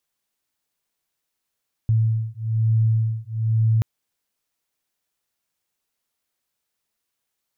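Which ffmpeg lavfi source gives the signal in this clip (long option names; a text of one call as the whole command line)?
ffmpeg -f lavfi -i "aevalsrc='0.0944*(sin(2*PI*111*t)+sin(2*PI*112.1*t))':duration=1.93:sample_rate=44100" out.wav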